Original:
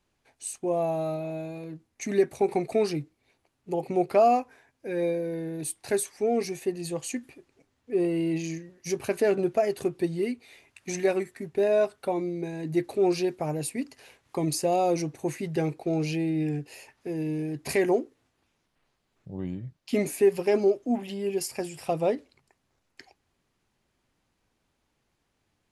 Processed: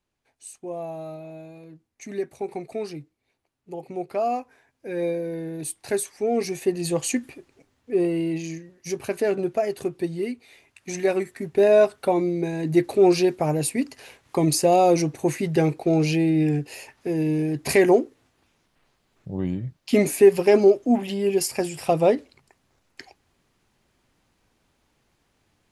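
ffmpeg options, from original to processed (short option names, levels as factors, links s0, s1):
-af "volume=5.62,afade=t=in:st=4.12:d=0.95:silence=0.421697,afade=t=in:st=6.27:d=0.76:silence=0.446684,afade=t=out:st=7.03:d=1.35:silence=0.398107,afade=t=in:st=10.89:d=0.8:silence=0.473151"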